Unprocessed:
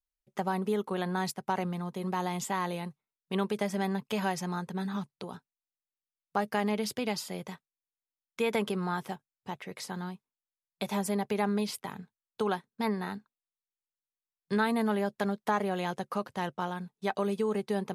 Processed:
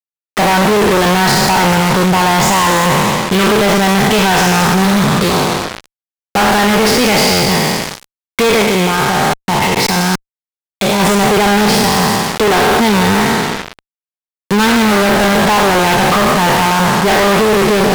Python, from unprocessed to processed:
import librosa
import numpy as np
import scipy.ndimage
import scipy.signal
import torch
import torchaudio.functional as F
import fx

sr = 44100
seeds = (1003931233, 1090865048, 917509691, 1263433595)

y = fx.spec_trails(x, sr, decay_s=1.84)
y = scipy.signal.sosfilt(scipy.signal.butter(2, 5100.0, 'lowpass', fs=sr, output='sos'), y)
y = fx.level_steps(y, sr, step_db=19, at=(8.62, 11.0))
y = fx.fuzz(y, sr, gain_db=50.0, gate_db=-44.0)
y = y * librosa.db_to_amplitude(4.0)